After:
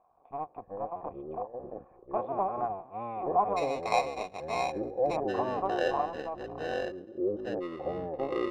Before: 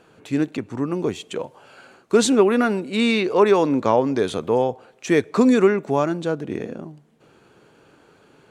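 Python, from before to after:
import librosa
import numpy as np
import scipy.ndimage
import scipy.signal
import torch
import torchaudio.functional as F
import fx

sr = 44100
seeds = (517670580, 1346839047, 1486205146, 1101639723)

y = fx.cycle_switch(x, sr, every=2, mode='muted')
y = fx.formant_cascade(y, sr, vowel='a')
y = fx.low_shelf(y, sr, hz=96.0, db=8.5)
y = fx.sample_hold(y, sr, seeds[0], rate_hz=3200.0, jitter_pct=0, at=(3.56, 5.15), fade=0.02)
y = fx.air_absorb(y, sr, metres=110.0)
y = fx.echo_pitch(y, sr, ms=240, semitones=-6, count=2, db_per_echo=-3.0)
y = y * librosa.db_to_amplitude(2.5)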